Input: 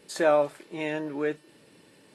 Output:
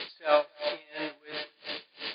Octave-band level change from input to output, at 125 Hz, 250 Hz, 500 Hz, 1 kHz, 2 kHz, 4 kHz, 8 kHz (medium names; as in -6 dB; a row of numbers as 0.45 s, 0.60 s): -16.0 dB, -11.0 dB, -4.0 dB, -1.0 dB, -1.5 dB, +8.5 dB, no reading